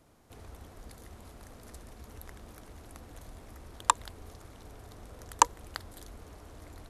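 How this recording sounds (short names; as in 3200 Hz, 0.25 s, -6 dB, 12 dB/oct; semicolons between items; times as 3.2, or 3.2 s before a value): noise floor -53 dBFS; spectral tilt -1.5 dB/oct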